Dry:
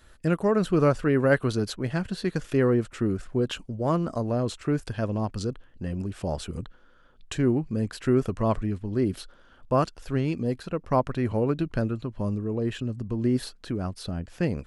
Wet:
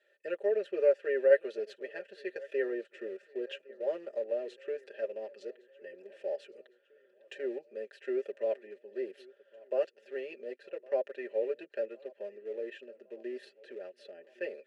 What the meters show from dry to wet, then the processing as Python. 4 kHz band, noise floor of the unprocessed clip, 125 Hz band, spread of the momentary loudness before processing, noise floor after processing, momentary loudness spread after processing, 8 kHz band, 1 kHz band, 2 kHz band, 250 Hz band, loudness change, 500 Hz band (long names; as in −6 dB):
−14.0 dB, −56 dBFS, below −40 dB, 10 LU, −69 dBFS, 18 LU, below −20 dB, −19.5 dB, −8.0 dB, −20.0 dB, −8.0 dB, −4.0 dB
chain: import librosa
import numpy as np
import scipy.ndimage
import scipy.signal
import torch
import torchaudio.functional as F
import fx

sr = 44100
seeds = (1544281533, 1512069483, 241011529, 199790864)

p1 = scipy.signal.sosfilt(scipy.signal.cheby1(3, 1.0, 360.0, 'highpass', fs=sr, output='sos'), x)
p2 = p1 + 0.92 * np.pad(p1, (int(5.0 * sr / 1000.0), 0))[:len(p1)]
p3 = np.where(np.abs(p2) >= 10.0 ** (-28.5 / 20.0), p2, 0.0)
p4 = p2 + F.gain(torch.from_numpy(p3), -11.0).numpy()
p5 = fx.vowel_filter(p4, sr, vowel='e')
p6 = fx.echo_feedback(p5, sr, ms=1110, feedback_pct=54, wet_db=-23.0)
y = F.gain(torch.from_numpy(p6), -1.0).numpy()